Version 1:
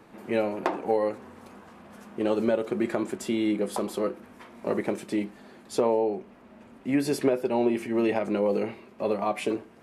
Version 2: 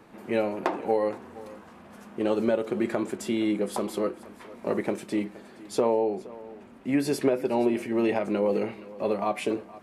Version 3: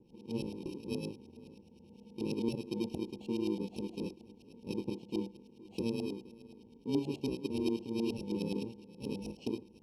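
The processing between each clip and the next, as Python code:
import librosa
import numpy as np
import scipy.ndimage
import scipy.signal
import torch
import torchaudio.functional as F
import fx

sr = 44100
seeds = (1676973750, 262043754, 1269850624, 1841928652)

y1 = x + 10.0 ** (-19.0 / 20.0) * np.pad(x, (int(469 * sr / 1000.0), 0))[:len(x)]
y2 = fx.bit_reversed(y1, sr, seeds[0], block=64)
y2 = fx.filter_lfo_lowpass(y2, sr, shape='saw_up', hz=9.5, low_hz=700.0, high_hz=3900.0, q=0.92)
y2 = scipy.signal.sosfilt(scipy.signal.ellip(3, 1.0, 80, [790.0, 2800.0], 'bandstop', fs=sr, output='sos'), y2)
y2 = y2 * librosa.db_to_amplitude(-4.0)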